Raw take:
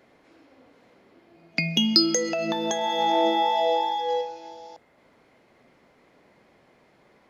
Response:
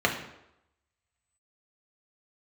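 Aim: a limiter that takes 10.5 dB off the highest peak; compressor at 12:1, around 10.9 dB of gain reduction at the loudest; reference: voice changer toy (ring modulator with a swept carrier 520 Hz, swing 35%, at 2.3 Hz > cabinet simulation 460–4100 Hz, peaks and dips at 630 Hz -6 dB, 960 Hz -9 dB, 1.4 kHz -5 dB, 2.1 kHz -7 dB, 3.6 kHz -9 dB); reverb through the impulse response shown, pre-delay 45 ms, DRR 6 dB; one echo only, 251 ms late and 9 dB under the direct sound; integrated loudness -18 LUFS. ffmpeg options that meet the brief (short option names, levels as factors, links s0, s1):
-filter_complex "[0:a]acompressor=threshold=0.0631:ratio=12,alimiter=limit=0.0794:level=0:latency=1,aecho=1:1:251:0.355,asplit=2[s0][s1];[1:a]atrim=start_sample=2205,adelay=45[s2];[s1][s2]afir=irnorm=-1:irlink=0,volume=0.0944[s3];[s0][s3]amix=inputs=2:normalize=0,aeval=exprs='val(0)*sin(2*PI*520*n/s+520*0.35/2.3*sin(2*PI*2.3*n/s))':c=same,highpass=460,equalizer=f=630:t=q:w=4:g=-6,equalizer=f=960:t=q:w=4:g=-9,equalizer=f=1400:t=q:w=4:g=-5,equalizer=f=2100:t=q:w=4:g=-7,equalizer=f=3600:t=q:w=4:g=-9,lowpass=f=4100:w=0.5412,lowpass=f=4100:w=1.3066,volume=11.2"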